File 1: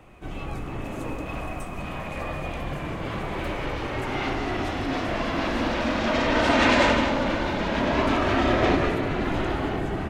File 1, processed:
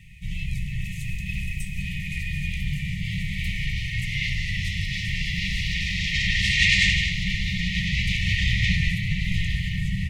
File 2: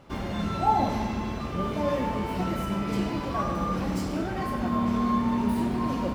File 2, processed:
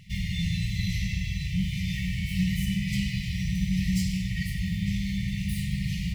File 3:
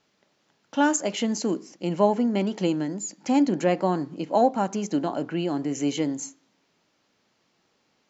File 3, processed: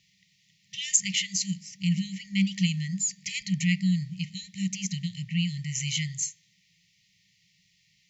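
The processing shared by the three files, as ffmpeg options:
-af "afftfilt=real='re*(1-between(b*sr/4096,200,1800))':imag='im*(1-between(b*sr/4096,200,1800))':win_size=4096:overlap=0.75,volume=2"

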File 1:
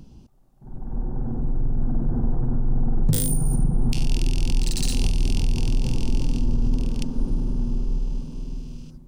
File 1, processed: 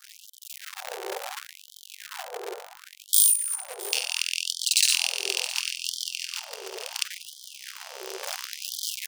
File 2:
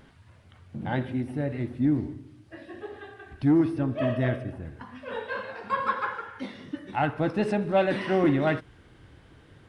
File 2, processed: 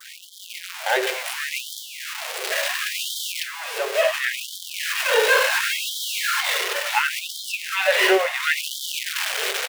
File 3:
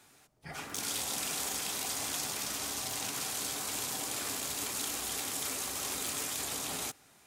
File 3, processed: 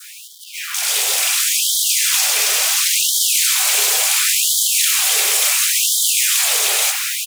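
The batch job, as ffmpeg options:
-filter_complex "[0:a]aeval=exprs='val(0)+0.5*0.0299*sgn(val(0))':c=same,acompressor=threshold=0.0794:ratio=6,adynamicequalizer=threshold=0.00398:dfrequency=2500:dqfactor=2:tfrequency=2500:tqfactor=2:attack=5:release=100:ratio=0.375:range=2:mode=boostabove:tftype=bell,highpass=f=120:p=1,equalizer=f=900:w=0.96:g=-7,bandreject=f=60:t=h:w=6,bandreject=f=120:t=h:w=6,bandreject=f=180:t=h:w=6,bandreject=f=240:t=h:w=6,bandreject=f=300:t=h:w=6,bandreject=f=360:t=h:w=6,bandreject=f=420:t=h:w=6,bandreject=f=480:t=h:w=6,bandreject=f=540:t=h:w=6,bandreject=f=600:t=h:w=6,asplit=2[s0][s1];[s1]aecho=0:1:667:0.126[s2];[s0][s2]amix=inputs=2:normalize=0,dynaudnorm=f=150:g=9:m=6.31,afftfilt=real='re*gte(b*sr/1024,360*pow(3100/360,0.5+0.5*sin(2*PI*0.71*pts/sr)))':imag='im*gte(b*sr/1024,360*pow(3100/360,0.5+0.5*sin(2*PI*0.71*pts/sr)))':win_size=1024:overlap=0.75"

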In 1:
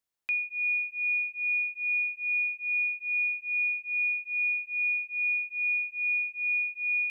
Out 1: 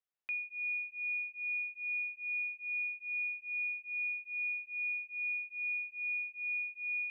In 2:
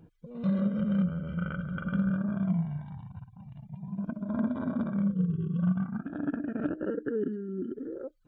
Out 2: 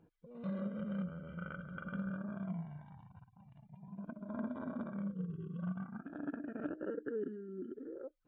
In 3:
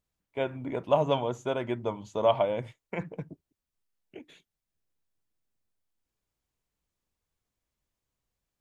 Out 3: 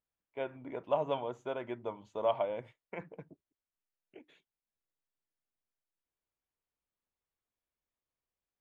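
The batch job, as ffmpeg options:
-af "bass=f=250:g=-8,treble=f=4000:g=-12,volume=0.473"

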